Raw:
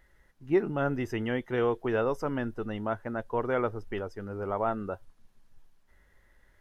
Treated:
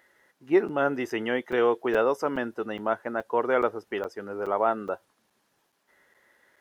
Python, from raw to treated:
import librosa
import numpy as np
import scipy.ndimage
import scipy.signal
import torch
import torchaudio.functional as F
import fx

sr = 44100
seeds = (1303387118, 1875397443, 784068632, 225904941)

y = scipy.signal.sosfilt(scipy.signal.butter(2, 310.0, 'highpass', fs=sr, output='sos'), x)
y = fx.buffer_crackle(y, sr, first_s=0.68, period_s=0.42, block=256, kind='zero')
y = y * librosa.db_to_amplitude(5.5)